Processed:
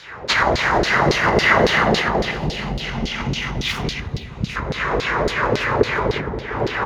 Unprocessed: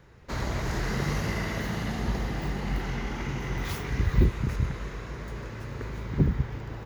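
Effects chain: low shelf 96 Hz +11 dB; compressor 12:1, threshold -27 dBFS, peak gain reduction 19.5 dB; LFO band-pass saw down 3.6 Hz 410–4600 Hz; 2.31–4.56 band shelf 800 Hz -13 dB 3 oct; analogue delay 0.175 s, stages 1024, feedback 77%, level -14 dB; maximiser +32.5 dB; gain -1 dB

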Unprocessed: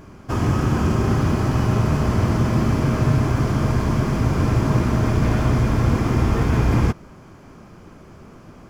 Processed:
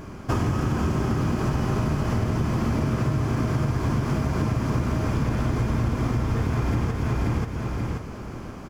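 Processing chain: on a send: feedback echo 0.533 s, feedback 29%, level -4.5 dB; on the sum: compressor 12:1, threshold -24 dBFS, peak gain reduction 14 dB; gain +4 dB

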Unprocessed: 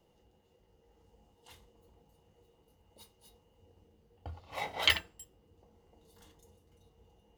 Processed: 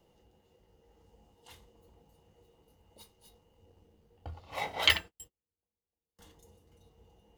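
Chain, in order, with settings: 3.02–4.37 half-wave gain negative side -3 dB; 4.98–6.19 gate -53 dBFS, range -35 dB; gain +2 dB

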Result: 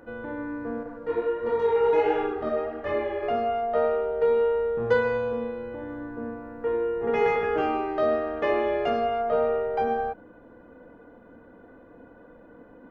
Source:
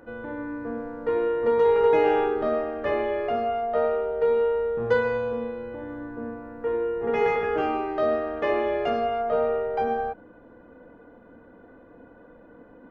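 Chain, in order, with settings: 0.83–3.23 chorus voices 2, 1.4 Hz, delay 25 ms, depth 3 ms

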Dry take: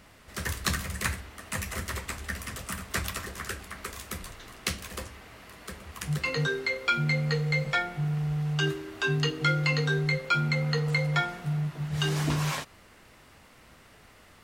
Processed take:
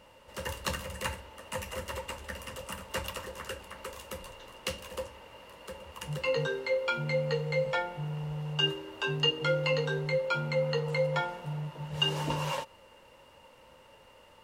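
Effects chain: small resonant body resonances 540/900/2800 Hz, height 18 dB, ringing for 45 ms; gain -7.5 dB

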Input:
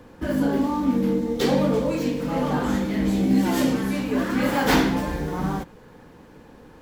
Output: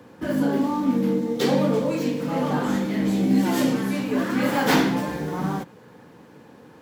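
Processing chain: HPF 100 Hz 24 dB/oct

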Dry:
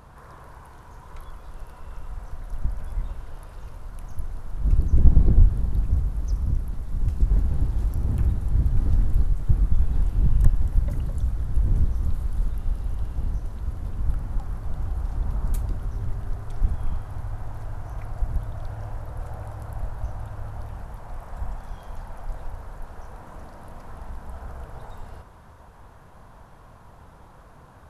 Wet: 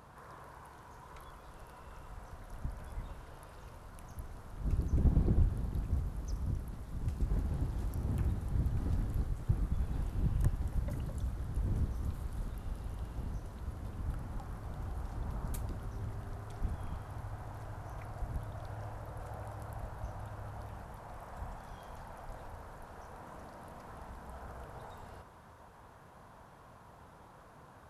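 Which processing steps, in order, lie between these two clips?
HPF 130 Hz 6 dB/oct; gain -4.5 dB

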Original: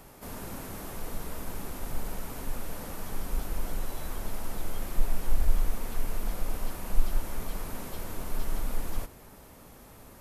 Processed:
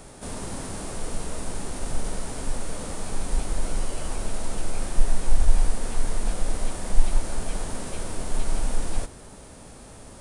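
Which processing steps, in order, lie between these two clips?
formant shift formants -5 st; gain +6.5 dB

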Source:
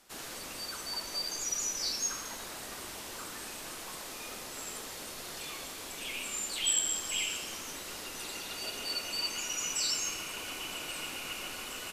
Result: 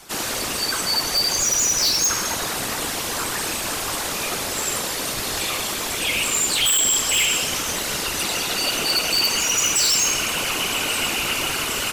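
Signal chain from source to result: whisperiser; in parallel at -8 dB: sine folder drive 14 dB, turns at -15.5 dBFS; on the sum: gain +5 dB

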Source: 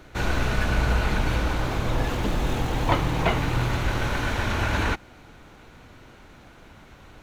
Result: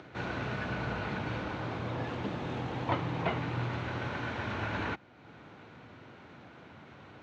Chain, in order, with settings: HPF 97 Hz 24 dB/oct; upward compressor, threshold -35 dBFS; air absorption 180 m; gain -7.5 dB

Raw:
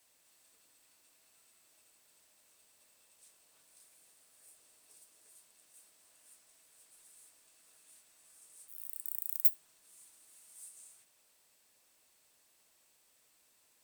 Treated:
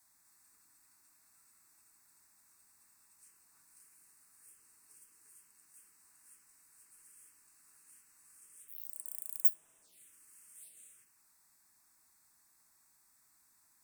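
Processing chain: envelope phaser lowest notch 470 Hz, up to 4400 Hz, full sweep at -40.5 dBFS; gain +2 dB

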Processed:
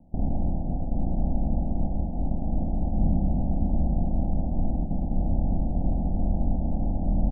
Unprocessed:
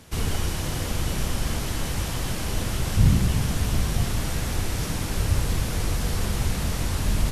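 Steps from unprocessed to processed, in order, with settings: per-bin compression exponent 0.4; fixed phaser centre 430 Hz, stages 6; gate -21 dBFS, range -19 dB; steep low-pass 820 Hz 72 dB/oct; echo 0.533 s -10 dB; gain -2.5 dB

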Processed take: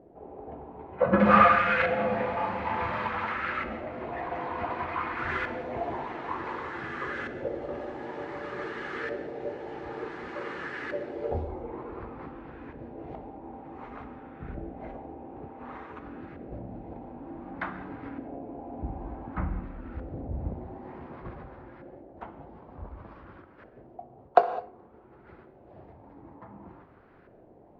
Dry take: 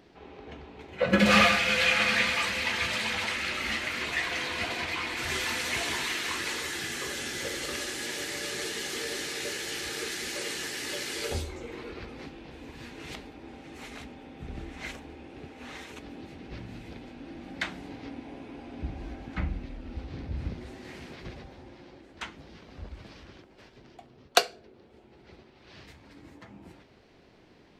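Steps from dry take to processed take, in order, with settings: LFO low-pass saw up 0.55 Hz 600–1500 Hz; 1.76–3.07 doubler 38 ms -2 dB; tape echo 62 ms, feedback 58%, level -17.5 dB, low-pass 2700 Hz; non-linear reverb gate 0.23 s flat, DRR 10 dB

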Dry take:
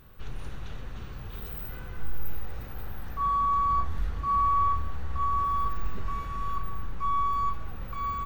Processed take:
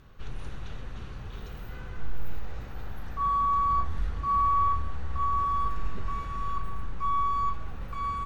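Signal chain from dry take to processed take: LPF 9700 Hz 12 dB/oct

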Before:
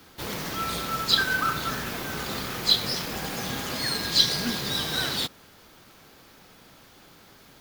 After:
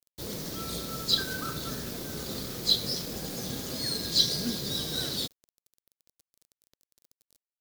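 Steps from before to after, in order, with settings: bit-crush 7-bit; band shelf 1500 Hz -10.5 dB 2.3 oct; gain -2 dB

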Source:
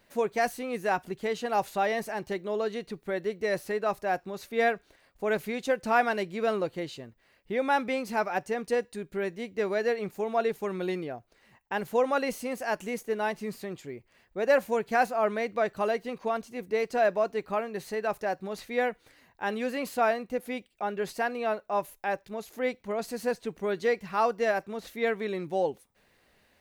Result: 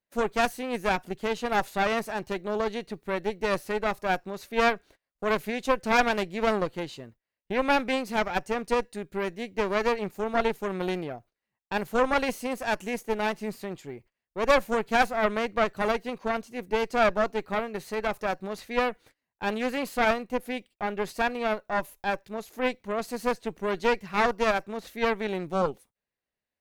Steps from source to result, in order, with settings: gate -52 dBFS, range -26 dB; added harmonics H 4 -8 dB, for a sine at -11.5 dBFS

